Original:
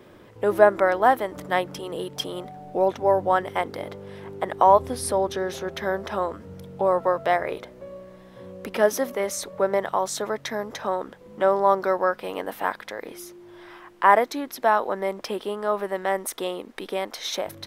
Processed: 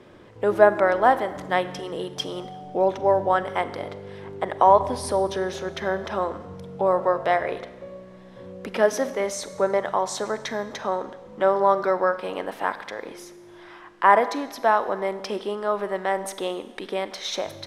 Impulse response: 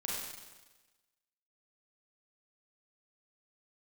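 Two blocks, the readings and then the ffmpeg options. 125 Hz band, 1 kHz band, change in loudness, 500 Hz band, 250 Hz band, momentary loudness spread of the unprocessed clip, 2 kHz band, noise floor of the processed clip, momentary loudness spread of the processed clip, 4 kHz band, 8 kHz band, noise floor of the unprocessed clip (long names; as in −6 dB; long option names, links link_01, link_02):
+1.0 dB, +0.5 dB, +0.5 dB, +0.5 dB, +0.5 dB, 18 LU, +0.5 dB, −46 dBFS, 17 LU, +0.5 dB, −2.0 dB, −49 dBFS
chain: -filter_complex "[0:a]lowpass=8000,asplit=2[link_01][link_02];[1:a]atrim=start_sample=2205[link_03];[link_02][link_03]afir=irnorm=-1:irlink=0,volume=-13dB[link_04];[link_01][link_04]amix=inputs=2:normalize=0,volume=-1dB"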